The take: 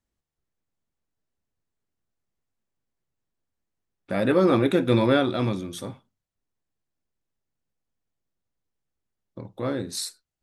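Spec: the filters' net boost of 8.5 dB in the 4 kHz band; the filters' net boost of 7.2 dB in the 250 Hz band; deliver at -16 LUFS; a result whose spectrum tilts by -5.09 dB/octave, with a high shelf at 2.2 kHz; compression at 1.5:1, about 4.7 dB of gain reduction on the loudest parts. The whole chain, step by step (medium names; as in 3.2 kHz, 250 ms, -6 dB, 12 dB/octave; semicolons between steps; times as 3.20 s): peaking EQ 250 Hz +9 dB; treble shelf 2.2 kHz +5 dB; peaking EQ 4 kHz +5.5 dB; compression 1.5:1, threshold -23 dBFS; trim +6.5 dB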